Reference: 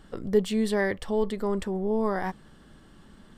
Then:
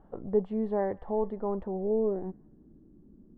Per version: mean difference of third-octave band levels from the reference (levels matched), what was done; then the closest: 6.5 dB: low-pass sweep 800 Hz -> 320 Hz, 1.60–2.35 s; feedback echo behind a high-pass 177 ms, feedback 45%, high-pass 1.4 kHz, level -21 dB; trim -6 dB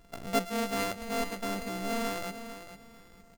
13.0 dB: sorted samples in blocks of 64 samples; on a send: feedback delay 448 ms, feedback 26%, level -11 dB; on the sum: trim -6.5 dB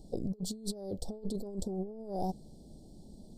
9.5 dB: elliptic band-stop 720–4300 Hz, stop band 40 dB; compressor with a negative ratio -32 dBFS, ratio -0.5; trim -4 dB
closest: first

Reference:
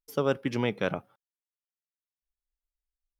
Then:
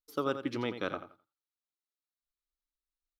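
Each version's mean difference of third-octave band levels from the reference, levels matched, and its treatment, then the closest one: 4.0 dB: graphic EQ with 31 bands 160 Hz -8 dB, 315 Hz +10 dB, 1.25 kHz +10 dB, 4 kHz +11 dB; on a send: feedback delay 86 ms, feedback 20%, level -10.5 dB; on the sum: trim -8 dB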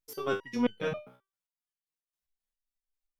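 7.5 dB: in parallel at -7.5 dB: saturation -24.5 dBFS, distortion -9 dB; on the sum: resonator arpeggio 7.5 Hz 63–1500 Hz; trim +7 dB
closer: first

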